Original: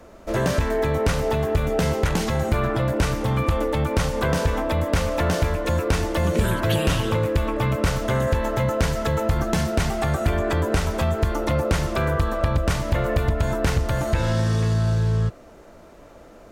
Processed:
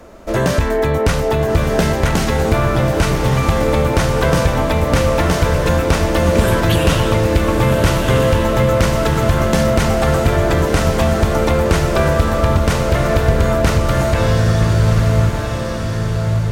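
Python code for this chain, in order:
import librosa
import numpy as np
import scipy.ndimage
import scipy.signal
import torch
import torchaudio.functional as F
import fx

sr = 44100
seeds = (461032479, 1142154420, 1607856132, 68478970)

p1 = x + fx.echo_diffused(x, sr, ms=1295, feedback_pct=47, wet_db=-4.0, dry=0)
p2 = fx.dmg_noise_colour(p1, sr, seeds[0], colour='brown', level_db=-52.0, at=(7.37, 8.7), fade=0.02)
y = p2 * librosa.db_to_amplitude(6.0)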